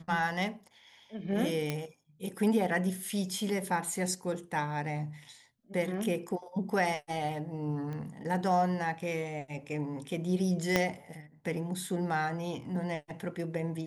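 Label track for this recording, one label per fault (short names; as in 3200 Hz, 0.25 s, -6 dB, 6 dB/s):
1.700000	1.700000	pop -17 dBFS
7.930000	7.930000	pop -29 dBFS
10.760000	10.760000	pop -11 dBFS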